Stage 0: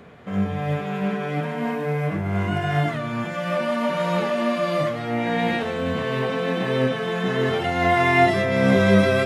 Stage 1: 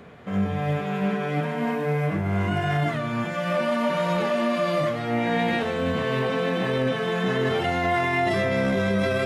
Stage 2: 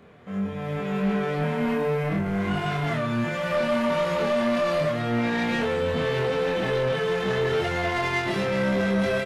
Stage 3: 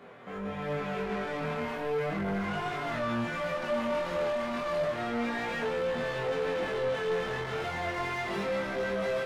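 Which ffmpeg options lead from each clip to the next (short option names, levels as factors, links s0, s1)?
-af "alimiter=limit=0.168:level=0:latency=1:release=10"
-filter_complex "[0:a]dynaudnorm=f=540:g=3:m=2.51,asoftclip=type=tanh:threshold=0.178,asplit=2[s0][s1];[s1]adelay=25,volume=0.794[s2];[s0][s2]amix=inputs=2:normalize=0,volume=0.422"
-filter_complex "[0:a]crystalizer=i=1.5:c=0,asplit=2[s0][s1];[s1]highpass=f=720:p=1,volume=12.6,asoftclip=type=tanh:threshold=0.158[s2];[s0][s2]amix=inputs=2:normalize=0,lowpass=f=1200:p=1,volume=0.501,flanger=delay=17:depth=7.2:speed=0.33,volume=0.531"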